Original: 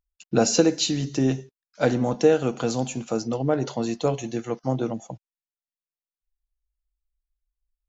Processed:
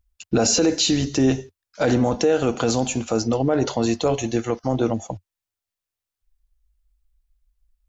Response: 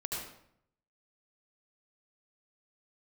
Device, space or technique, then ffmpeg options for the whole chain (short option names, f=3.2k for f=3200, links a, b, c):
car stereo with a boomy subwoofer: -af "lowshelf=f=110:t=q:w=3:g=7,alimiter=limit=-17.5dB:level=0:latency=1:release=26,volume=7.5dB"